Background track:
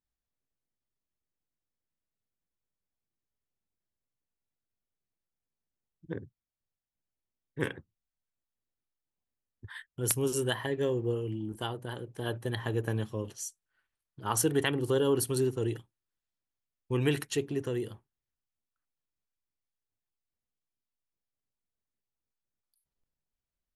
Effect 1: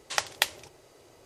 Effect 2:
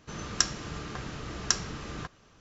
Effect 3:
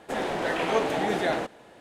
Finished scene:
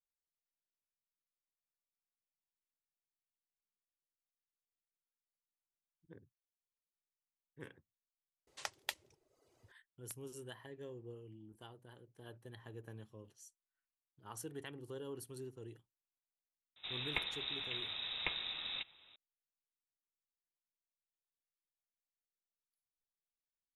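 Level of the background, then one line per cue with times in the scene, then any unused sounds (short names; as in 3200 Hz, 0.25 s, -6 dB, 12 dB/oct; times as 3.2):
background track -19.5 dB
8.47 add 1 -15.5 dB + reverb removal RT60 0.77 s
16.76 add 2 -5 dB + inverted band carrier 3800 Hz
not used: 3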